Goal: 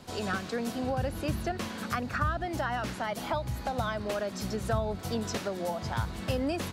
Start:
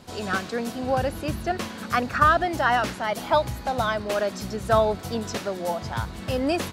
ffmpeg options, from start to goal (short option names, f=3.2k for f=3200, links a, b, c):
-filter_complex "[0:a]acrossover=split=200[a][b];[b]acompressor=threshold=-28dB:ratio=6[c];[a][c]amix=inputs=2:normalize=0,volume=-1.5dB"